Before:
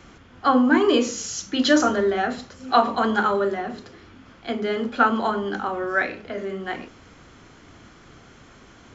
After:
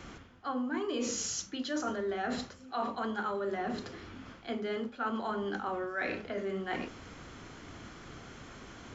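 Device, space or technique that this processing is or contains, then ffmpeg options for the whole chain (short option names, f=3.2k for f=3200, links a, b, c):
compression on the reversed sound: -af "areverse,acompressor=threshold=-32dB:ratio=8,areverse"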